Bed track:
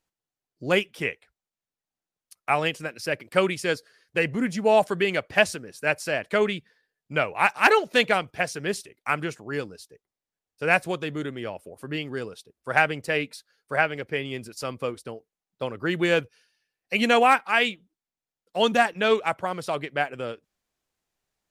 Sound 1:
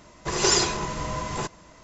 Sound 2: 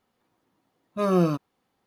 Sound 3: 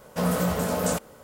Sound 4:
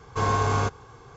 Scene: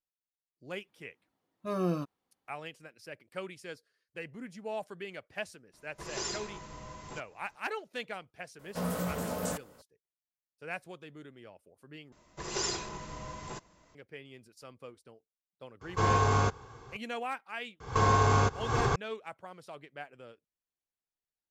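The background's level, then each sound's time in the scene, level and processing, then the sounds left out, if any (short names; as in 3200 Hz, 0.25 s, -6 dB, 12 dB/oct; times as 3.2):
bed track -18.5 dB
0.68 add 2 -9.5 dB
5.73 add 1 -16 dB
8.59 add 3 -9 dB
12.12 replace with 1 -12.5 dB
15.81 add 4 -2.5 dB
17.8 add 4 -1 dB + recorder AGC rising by 77 dB/s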